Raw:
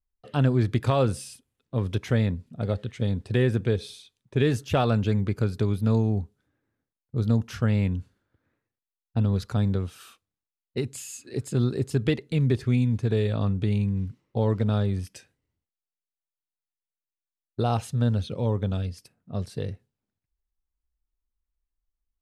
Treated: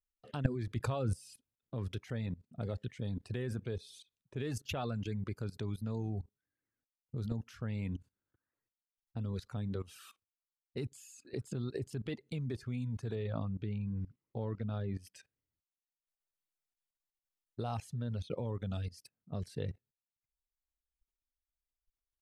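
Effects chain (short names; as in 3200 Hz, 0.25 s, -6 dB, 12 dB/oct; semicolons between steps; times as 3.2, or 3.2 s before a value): reverb removal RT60 0.84 s; 13.15–14.97 air absorption 200 m; level quantiser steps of 19 dB; 0.76–1.16 low shelf 190 Hz +8.5 dB; gain +1.5 dB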